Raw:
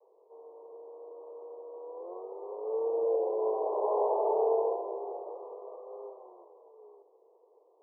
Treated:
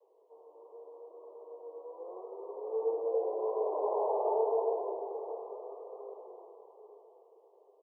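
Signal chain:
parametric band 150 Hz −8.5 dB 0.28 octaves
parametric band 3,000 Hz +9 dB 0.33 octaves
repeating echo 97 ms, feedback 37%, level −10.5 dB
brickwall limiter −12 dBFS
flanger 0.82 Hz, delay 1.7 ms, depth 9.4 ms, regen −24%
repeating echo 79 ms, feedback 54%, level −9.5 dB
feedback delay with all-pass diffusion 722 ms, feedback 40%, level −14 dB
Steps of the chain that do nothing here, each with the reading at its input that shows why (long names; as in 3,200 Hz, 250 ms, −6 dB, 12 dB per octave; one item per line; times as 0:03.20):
parametric band 150 Hz: nothing at its input below 300 Hz
parametric band 3,000 Hz: nothing at its input above 1,100 Hz
brickwall limiter −12 dBFS: peak of its input −17.5 dBFS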